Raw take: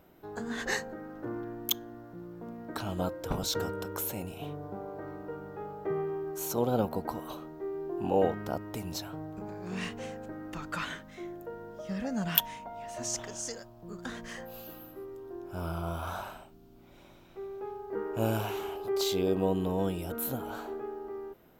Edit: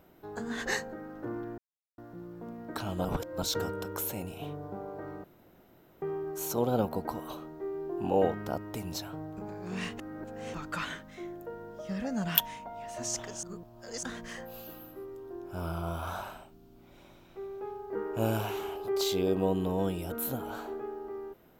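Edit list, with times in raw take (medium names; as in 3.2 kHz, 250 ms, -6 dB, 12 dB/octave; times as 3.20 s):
1.58–1.98 s: mute
3.05–3.42 s: reverse
5.24–6.02 s: room tone
9.99–10.54 s: reverse
13.43–14.03 s: reverse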